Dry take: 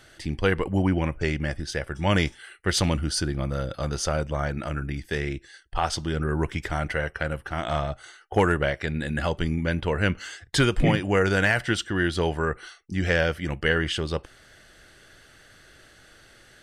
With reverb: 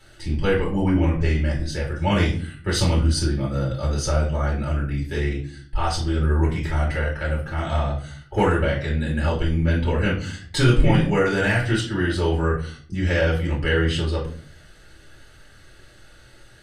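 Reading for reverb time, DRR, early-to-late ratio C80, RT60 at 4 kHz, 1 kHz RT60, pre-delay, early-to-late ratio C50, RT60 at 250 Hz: 0.45 s, −6.5 dB, 12.5 dB, 0.35 s, 0.35 s, 3 ms, 7.5 dB, 0.75 s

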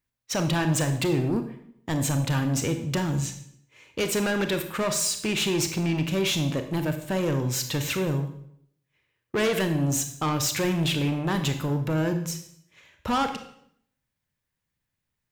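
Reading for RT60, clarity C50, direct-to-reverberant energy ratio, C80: 0.70 s, 9.0 dB, 7.0 dB, 12.0 dB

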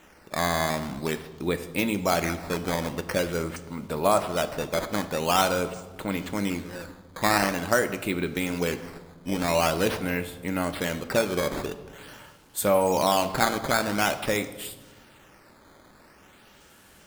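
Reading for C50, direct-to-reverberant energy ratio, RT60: 13.0 dB, 9.0 dB, 1.3 s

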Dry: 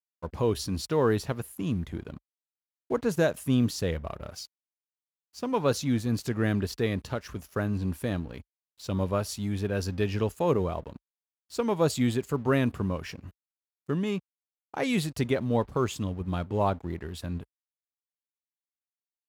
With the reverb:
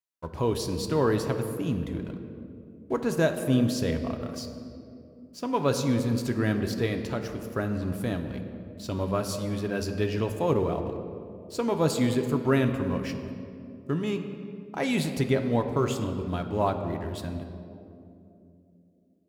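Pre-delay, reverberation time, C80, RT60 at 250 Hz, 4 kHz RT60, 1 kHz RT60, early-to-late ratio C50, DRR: 3 ms, 2.8 s, 9.0 dB, 4.1 s, 1.4 s, 2.3 s, 8.0 dB, 5.5 dB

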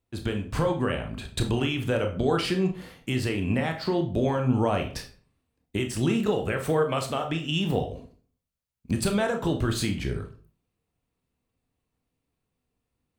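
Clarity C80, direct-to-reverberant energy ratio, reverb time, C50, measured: 15.5 dB, 4.0 dB, 0.45 s, 10.0 dB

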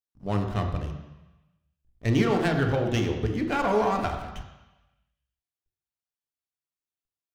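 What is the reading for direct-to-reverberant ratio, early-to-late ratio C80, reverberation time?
3.0 dB, 8.0 dB, 1.0 s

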